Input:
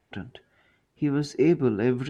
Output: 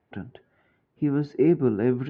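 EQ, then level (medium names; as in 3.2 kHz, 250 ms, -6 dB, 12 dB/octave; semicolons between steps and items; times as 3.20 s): high-pass 83 Hz; distance through air 190 m; treble shelf 2.6 kHz -11 dB; +1.5 dB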